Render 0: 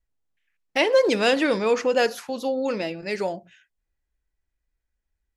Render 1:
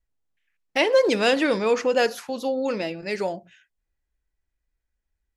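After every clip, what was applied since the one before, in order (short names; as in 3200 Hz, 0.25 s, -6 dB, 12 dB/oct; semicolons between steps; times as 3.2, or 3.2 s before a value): nothing audible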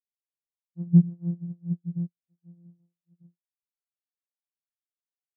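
sample sorter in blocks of 256 samples; spectral expander 4:1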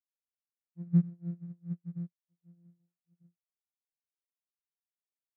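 median filter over 41 samples; gain -8 dB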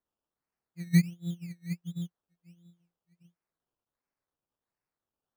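decimation with a swept rate 17×, swing 60% 1.4 Hz; gain +2.5 dB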